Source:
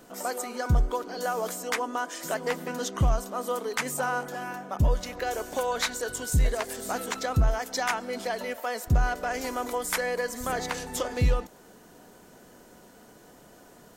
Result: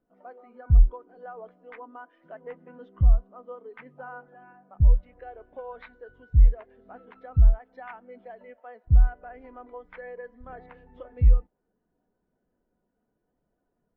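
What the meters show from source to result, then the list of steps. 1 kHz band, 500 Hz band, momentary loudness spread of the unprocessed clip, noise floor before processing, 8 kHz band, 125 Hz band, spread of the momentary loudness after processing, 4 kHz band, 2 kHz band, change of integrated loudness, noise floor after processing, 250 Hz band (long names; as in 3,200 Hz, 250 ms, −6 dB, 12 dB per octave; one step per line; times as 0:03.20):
−13.0 dB, −11.5 dB, 6 LU, −53 dBFS, below −40 dB, +3.5 dB, 21 LU, below −30 dB, −15.5 dB, +5.5 dB, −78 dBFS, −10.5 dB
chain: low-pass filter 3,000 Hz 24 dB per octave
low-shelf EQ 85 Hz +10.5 dB
every bin expanded away from the loudest bin 1.5 to 1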